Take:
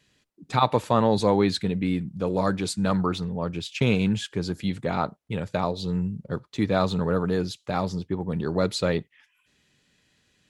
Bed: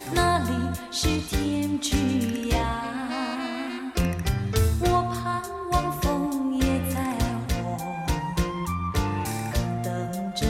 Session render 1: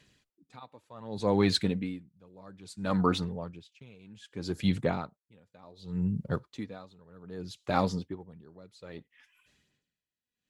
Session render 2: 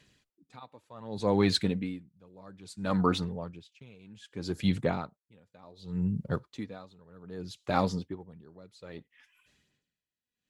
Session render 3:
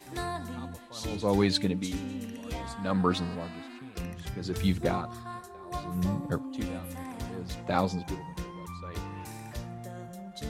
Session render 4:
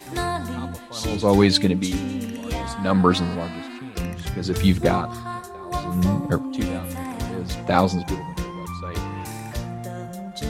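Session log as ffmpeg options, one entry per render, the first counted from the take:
-af "aphaser=in_gain=1:out_gain=1:delay=4.2:decay=0.34:speed=0.82:type=sinusoidal,aeval=exprs='val(0)*pow(10,-31*(0.5-0.5*cos(2*PI*0.64*n/s))/20)':c=same"
-af anull
-filter_complex "[1:a]volume=-13dB[a];[0:a][a]amix=inputs=2:normalize=0"
-af "volume=9dB"

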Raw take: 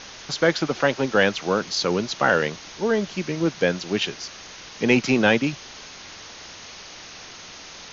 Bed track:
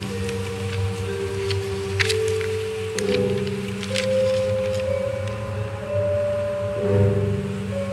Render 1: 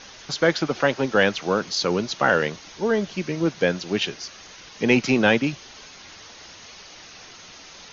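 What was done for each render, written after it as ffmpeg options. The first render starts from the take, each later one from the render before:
-af "afftdn=nr=6:nf=-42"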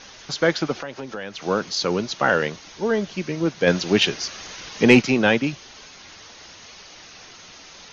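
-filter_complex "[0:a]asettb=1/sr,asplit=3[a][b][c];[a]atrim=end=0.744[d];[b]atrim=start=0.74:end=1.42,asetpts=PTS-STARTPTS,afade=t=in:d=0.004:c=qsin,afade=t=out:st=0.676:d=0.004:c=qsin,acompressor=threshold=-30dB:ratio=4:attack=3.2:release=140:knee=1:detection=peak[e];[c]atrim=start=1.416[f];[d][e]acrossfade=d=0.004:c1=hsin:c2=qsin[g];[g][f]acrossfade=d=0.004:c1=qsin:c2=hsin,asplit=3[h][i][j];[h]afade=t=out:st=3.66:d=0.02[k];[i]acontrast=68,afade=t=in:st=3.66:d=0.02,afade=t=out:st=5.01:d=0.02[l];[j]afade=t=in:st=5.01:d=0.02[m];[k][l][m]amix=inputs=3:normalize=0"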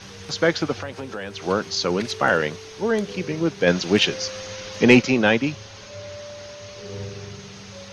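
-filter_complex "[1:a]volume=-15.5dB[a];[0:a][a]amix=inputs=2:normalize=0"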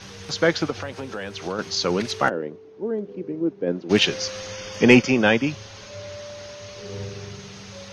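-filter_complex "[0:a]asettb=1/sr,asplit=3[a][b][c];[a]atrim=end=0.704[d];[b]atrim=start=0.7:end=1.59,asetpts=PTS-STARTPTS,afade=t=in:d=0.004:c=qsin,afade=t=out:st=0.886:d=0.004:c=qsin,acompressor=threshold=-23dB:ratio=6:attack=3.2:release=140:knee=1:detection=peak[e];[c]atrim=start=1.586[f];[d][e]acrossfade=d=0.004:c1=hsin:c2=qsin[g];[g][f]acrossfade=d=0.004:c1=qsin:c2=hsin,asplit=3[h][i][j];[h]afade=t=out:st=2.28:d=0.02[k];[i]bandpass=f=320:t=q:w=1.9,afade=t=in:st=2.28:d=0.02,afade=t=out:st=3.89:d=0.02[l];[j]afade=t=in:st=3.89:d=0.02[m];[k][l][m]amix=inputs=3:normalize=0,asettb=1/sr,asplit=3[n][o][p];[n]atrim=end=4.514[q];[o]atrim=start=4.51:end=5.5,asetpts=PTS-STARTPTS,afade=t=in:d=0.004:c=qsin,afade=t=out:st=0.986:d=0.004:c=qsin,asuperstop=centerf=4000:order=8:qfactor=7.3[r];[p]atrim=start=5.496[s];[q][r]acrossfade=d=0.004:c1=hsin:c2=qsin[t];[t][s]acrossfade=d=0.004:c1=qsin:c2=hsin"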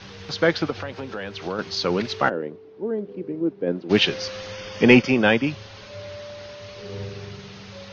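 -af "lowpass=f=5k:w=0.5412,lowpass=f=5k:w=1.3066"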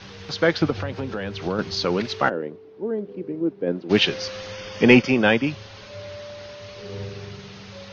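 -filter_complex "[0:a]asettb=1/sr,asplit=3[a][b][c];[a]atrim=end=0.614[d];[b]atrim=start=0.61:end=1.85,asetpts=PTS-STARTPTS,afade=t=in:d=0.004:c=qsin,afade=t=out:st=1.236:d=0.004:c=qsin,lowshelf=f=300:g=8.5[e];[c]atrim=start=1.846[f];[d][e]acrossfade=d=0.004:c1=hsin:c2=qsin[g];[g][f]acrossfade=d=0.004:c1=qsin:c2=hsin"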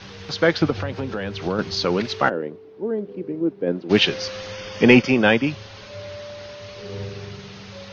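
-af "volume=1.5dB,alimiter=limit=-2dB:level=0:latency=1"

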